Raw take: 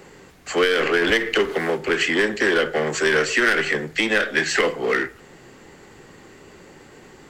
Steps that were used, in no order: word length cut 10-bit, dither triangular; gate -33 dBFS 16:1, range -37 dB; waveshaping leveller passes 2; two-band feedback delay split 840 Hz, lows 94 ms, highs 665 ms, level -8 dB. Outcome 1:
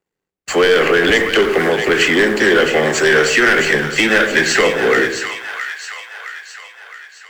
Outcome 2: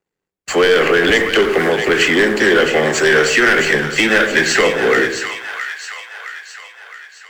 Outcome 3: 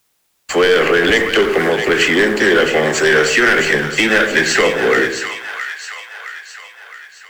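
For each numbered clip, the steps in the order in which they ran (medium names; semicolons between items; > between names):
word length cut > waveshaping leveller > gate > two-band feedback delay; waveshaping leveller > word length cut > gate > two-band feedback delay; gate > word length cut > waveshaping leveller > two-band feedback delay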